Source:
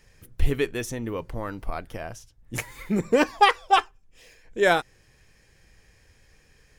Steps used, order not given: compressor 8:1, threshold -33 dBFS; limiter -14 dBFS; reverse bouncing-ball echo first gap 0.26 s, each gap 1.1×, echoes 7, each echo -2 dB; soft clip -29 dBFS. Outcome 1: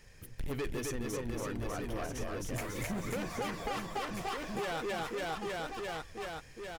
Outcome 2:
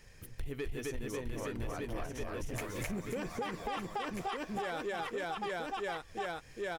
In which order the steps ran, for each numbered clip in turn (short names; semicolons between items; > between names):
limiter > soft clip > reverse bouncing-ball echo > compressor; reverse bouncing-ball echo > limiter > compressor > soft clip